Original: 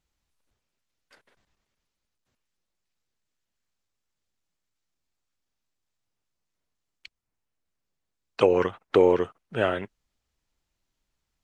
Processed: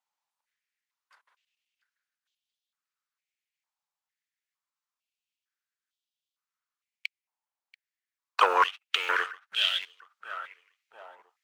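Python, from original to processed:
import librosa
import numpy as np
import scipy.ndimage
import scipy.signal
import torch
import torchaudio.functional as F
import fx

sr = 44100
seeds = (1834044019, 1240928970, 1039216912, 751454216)

p1 = fx.rider(x, sr, range_db=10, speed_s=2.0)
p2 = fx.leveller(p1, sr, passes=2)
p3 = p2 + fx.echo_feedback(p2, sr, ms=685, feedback_pct=34, wet_db=-21.0, dry=0)
p4 = fx.filter_held_highpass(p3, sr, hz=2.2, low_hz=870.0, high_hz=3300.0)
y = p4 * librosa.db_to_amplitude(-2.5)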